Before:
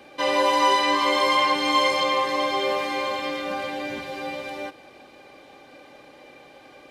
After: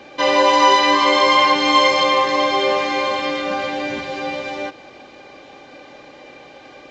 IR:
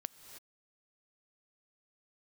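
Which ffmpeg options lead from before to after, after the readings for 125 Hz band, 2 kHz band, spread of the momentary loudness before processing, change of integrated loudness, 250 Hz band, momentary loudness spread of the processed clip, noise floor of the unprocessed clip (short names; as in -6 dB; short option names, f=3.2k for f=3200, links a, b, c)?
+6.5 dB, +6.5 dB, 13 LU, +6.5 dB, +6.5 dB, 13 LU, -49 dBFS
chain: -af "volume=6.5dB" -ar 16000 -c:a libvorbis -b:a 64k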